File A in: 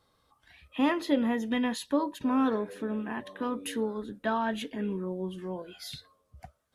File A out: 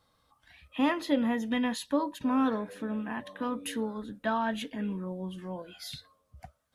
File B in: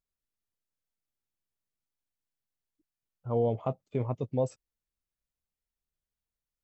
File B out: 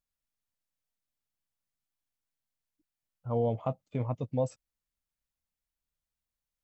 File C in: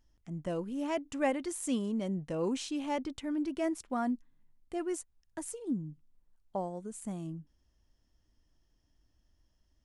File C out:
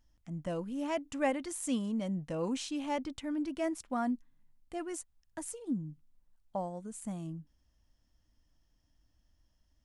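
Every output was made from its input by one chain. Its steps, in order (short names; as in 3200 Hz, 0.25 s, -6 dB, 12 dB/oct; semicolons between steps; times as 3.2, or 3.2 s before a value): bell 390 Hz -11 dB 0.25 oct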